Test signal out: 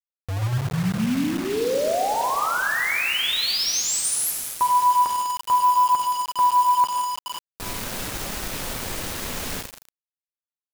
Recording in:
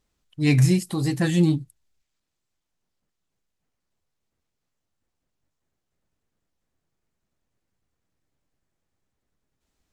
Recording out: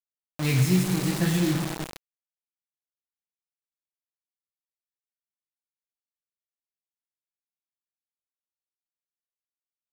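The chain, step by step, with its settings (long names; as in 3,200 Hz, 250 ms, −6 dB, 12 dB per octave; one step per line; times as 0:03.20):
flanger 0.48 Hz, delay 4.6 ms, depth 8.2 ms, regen −31%
four-comb reverb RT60 2.4 s, combs from 33 ms, DRR 3 dB
bit reduction 5 bits
level −1 dB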